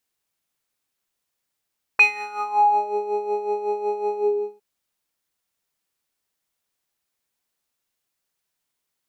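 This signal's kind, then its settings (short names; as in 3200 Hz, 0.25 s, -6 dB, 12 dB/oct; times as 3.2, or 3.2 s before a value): synth patch with tremolo G#4, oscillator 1 triangle, oscillator 2 square, interval +12 st, detune 4 cents, oscillator 2 level -2 dB, sub -18.5 dB, noise -23.5 dB, filter bandpass, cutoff 310 Hz, Q 11, filter envelope 3 oct, filter decay 0.96 s, filter sustain 25%, attack 4.4 ms, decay 0.20 s, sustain -9 dB, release 0.46 s, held 2.15 s, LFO 5.4 Hz, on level 9 dB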